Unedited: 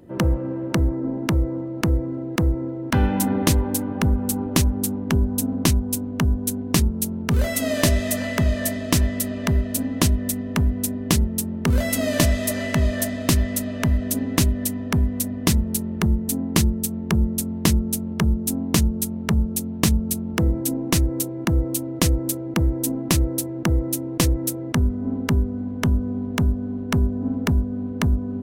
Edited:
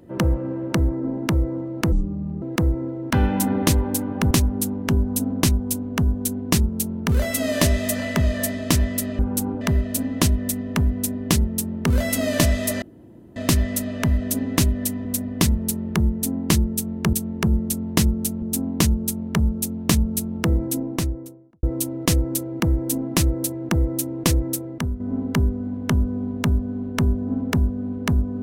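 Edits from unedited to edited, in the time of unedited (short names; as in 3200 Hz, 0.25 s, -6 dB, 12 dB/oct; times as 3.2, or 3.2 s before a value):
1.92–2.22 speed 60%
4.11–4.53 move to 9.41
12.62–13.16 room tone
14.85–15.11 cut
16.81–17.19 loop, 2 plays
18.1–18.36 cut
20.54–21.57 studio fade out
24.41–24.94 fade out, to -9 dB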